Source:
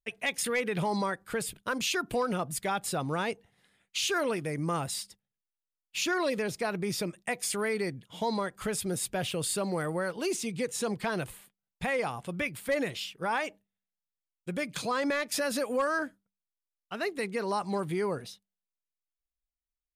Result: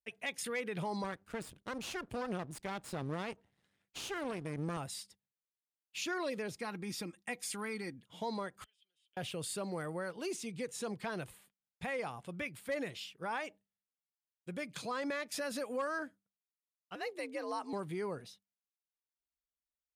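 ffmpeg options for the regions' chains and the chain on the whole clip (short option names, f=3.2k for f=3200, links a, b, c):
-filter_complex "[0:a]asettb=1/sr,asplit=3[a][b][c];[a]atrim=end=1.044[d];[b]atrim=start=1.04:end=4.77,asetpts=PTS-STARTPTS,afade=t=in:d=0.004:c=qsin,afade=t=out:st=3.726:d=0.004:c=qsin,lowpass=11k,lowshelf=f=340:g=8,aeval=exprs='max(val(0),0)':c=same[e];[c]atrim=start=4.766[f];[d][e]acrossfade=d=0.004:c1=hsin:c2=qsin[g];[g][f]acrossfade=d=0.004:c1=qsin:c2=hsin,asettb=1/sr,asplit=3[h][i][j];[h]atrim=end=6.574[k];[i]atrim=start=6.57:end=8.02,asetpts=PTS-STARTPTS,afade=t=in:d=0.004:c=qsin,afade=t=out:st=1.446:d=0.004:c=qsin,equalizer=f=580:w=5.9:g=-12.5,aecho=1:1:3.7:0.48,atrim=end_sample=63945[l];[j]atrim=start=8.016[m];[k][l]acrossfade=d=0.004:c1=hsin:c2=qsin[n];[n][m]acrossfade=d=0.004:c1=qsin:c2=hsin,asettb=1/sr,asplit=3[o][p][q];[o]atrim=end=8.644[r];[p]atrim=start=8.64:end=9.17,asetpts=PTS-STARTPTS,afade=t=in:d=0.004:c=qsin,afade=t=out:st=0.526:d=0.004:c=qsin,acompressor=threshold=-38dB:ratio=10:attack=3.2:release=140:knee=1:detection=peak,bandpass=f=3.1k:t=q:w=16[s];[q]atrim=start=9.166[t];[r][s]acrossfade=d=0.004:c1=hsin:c2=qsin[u];[u][t]acrossfade=d=0.004:c1=qsin:c2=hsin,asettb=1/sr,asplit=3[v][w][x];[v]atrim=end=16.954[y];[w]atrim=start=16.95:end=17.73,asetpts=PTS-STARTPTS,afade=t=in:d=0.004:c=qsin,afade=t=out:st=0.776:d=0.004:c=qsin,bandreject=f=1.3k:w=10,afreqshift=74[z];[x]atrim=start=17.726[aa];[y][z]acrossfade=d=0.004:c1=hsin:c2=qsin[ab];[ab][aa]acrossfade=d=0.004:c1=qsin:c2=hsin,highpass=45,highshelf=f=12k:g=-5,volume=-8dB"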